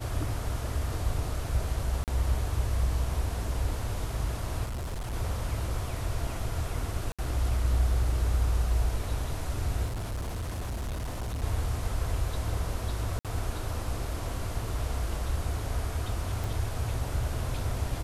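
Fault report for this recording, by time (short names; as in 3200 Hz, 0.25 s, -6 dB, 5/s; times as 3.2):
2.04–2.08 gap 38 ms
4.65–5.14 clipped -31 dBFS
7.12–7.19 gap 66 ms
9.86–11.44 clipped -30 dBFS
13.19–13.25 gap 57 ms
16.44 pop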